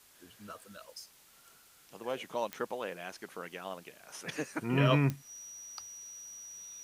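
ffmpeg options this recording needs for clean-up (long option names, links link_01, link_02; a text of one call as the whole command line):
ffmpeg -i in.wav -af "adeclick=threshold=4,bandreject=frequency=5800:width=30,afftdn=noise_reduction=18:noise_floor=-61" out.wav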